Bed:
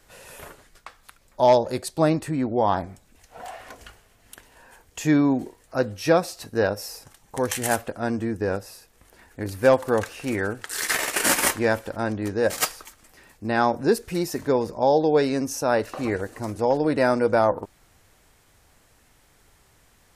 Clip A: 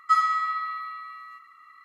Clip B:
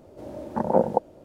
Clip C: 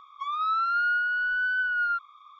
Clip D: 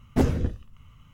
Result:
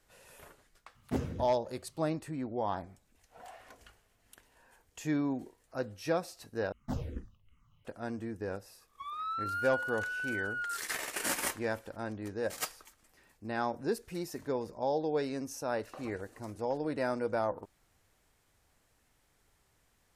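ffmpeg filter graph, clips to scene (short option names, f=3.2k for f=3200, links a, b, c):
-filter_complex "[4:a]asplit=2[a][b];[0:a]volume=-12.5dB[c];[a]highpass=81[d];[b]asplit=2[e][f];[f]afreqshift=-2.6[g];[e][g]amix=inputs=2:normalize=1[h];[3:a]agate=range=-33dB:threshold=-44dB:ratio=3:release=100:detection=peak[i];[c]asplit=2[j][k];[j]atrim=end=6.724[l];[h]atrim=end=1.13,asetpts=PTS-STARTPTS,volume=-11.5dB[m];[k]atrim=start=7.846[n];[d]atrim=end=1.13,asetpts=PTS-STARTPTS,volume=-11dB,afade=t=in:d=0.004:c=hsin,afade=t=out:st=1.126:d=0.004:c=hsin,adelay=950[o];[i]atrim=end=2.39,asetpts=PTS-STARTPTS,volume=-10.5dB,afade=t=in:d=0.004:c=hsin,afade=t=out:st=2.386:d=0.004:c=hsin,adelay=8790[p];[l][m]acrossfade=d=0.004:c1=hsin:c2=hsin[q];[q][n]acrossfade=d=0.004:c1=hsin:c2=hsin[r];[r][o][p]amix=inputs=3:normalize=0"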